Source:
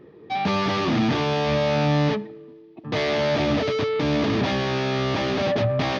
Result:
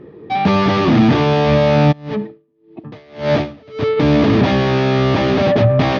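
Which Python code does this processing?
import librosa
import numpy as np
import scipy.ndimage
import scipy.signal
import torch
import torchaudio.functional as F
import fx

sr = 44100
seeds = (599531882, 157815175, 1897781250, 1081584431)

y = fx.lowpass(x, sr, hz=3500.0, slope=6)
y = fx.low_shelf(y, sr, hz=450.0, db=4.0)
y = fx.tremolo_db(y, sr, hz=1.8, depth_db=30, at=(1.91, 3.96), fade=0.02)
y = y * librosa.db_to_amplitude(7.0)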